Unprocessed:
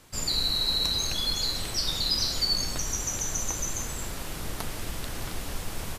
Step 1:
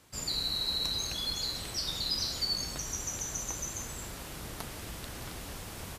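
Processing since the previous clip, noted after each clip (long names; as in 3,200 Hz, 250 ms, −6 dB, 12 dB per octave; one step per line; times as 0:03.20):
high-pass filter 40 Hz
level −5.5 dB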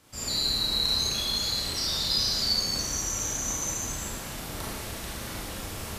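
four-comb reverb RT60 1.1 s, combs from 28 ms, DRR −5 dB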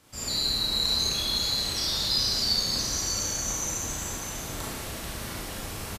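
single-tap delay 599 ms −8.5 dB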